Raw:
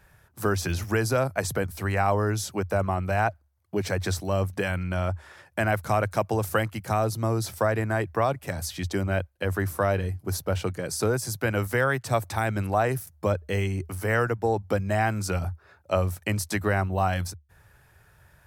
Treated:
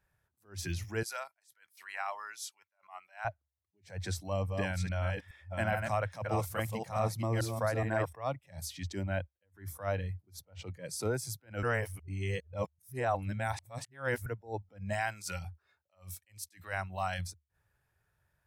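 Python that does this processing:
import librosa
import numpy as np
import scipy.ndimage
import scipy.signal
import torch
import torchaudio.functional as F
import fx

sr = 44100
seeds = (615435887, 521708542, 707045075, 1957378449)

y = fx.highpass(x, sr, hz=1100.0, slope=12, at=(1.03, 3.25))
y = fx.reverse_delay(y, sr, ms=420, wet_db=-3.5, at=(4.05, 8.13))
y = fx.high_shelf(y, sr, hz=8100.0, db=-6.0, at=(10.18, 10.75))
y = fx.tilt_shelf(y, sr, db=-5.0, hz=1200.0, at=(14.93, 17.19))
y = fx.edit(y, sr, fx.reverse_span(start_s=11.63, length_s=2.63), tone=tone)
y = fx.noise_reduce_blind(y, sr, reduce_db=12)
y = fx.attack_slew(y, sr, db_per_s=200.0)
y = F.gain(torch.from_numpy(y), -7.5).numpy()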